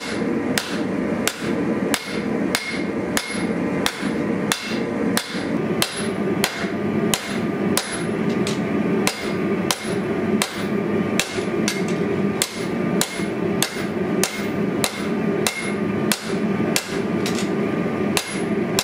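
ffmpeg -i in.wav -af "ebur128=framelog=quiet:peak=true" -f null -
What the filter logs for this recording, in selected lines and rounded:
Integrated loudness:
  I:         -22.2 LUFS
  Threshold: -32.2 LUFS
Loudness range:
  LRA:         0.9 LU
  Threshold: -42.1 LUFS
  LRA low:   -22.6 LUFS
  LRA high:  -21.8 LUFS
True peak:
  Peak:       -2.3 dBFS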